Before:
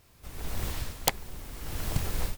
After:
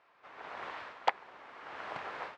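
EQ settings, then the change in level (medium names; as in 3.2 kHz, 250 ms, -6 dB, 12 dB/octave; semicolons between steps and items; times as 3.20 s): high-pass 920 Hz 12 dB/octave; low-pass 1.5 kHz 12 dB/octave; distance through air 80 m; +7.0 dB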